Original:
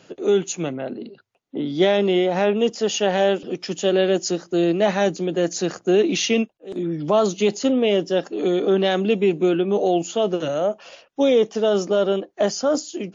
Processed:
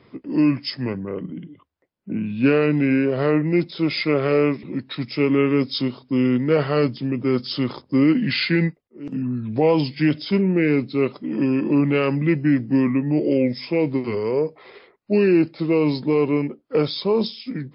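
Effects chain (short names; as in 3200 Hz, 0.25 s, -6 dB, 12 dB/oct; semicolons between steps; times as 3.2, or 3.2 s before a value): speed mistake 45 rpm record played at 33 rpm; mismatched tape noise reduction decoder only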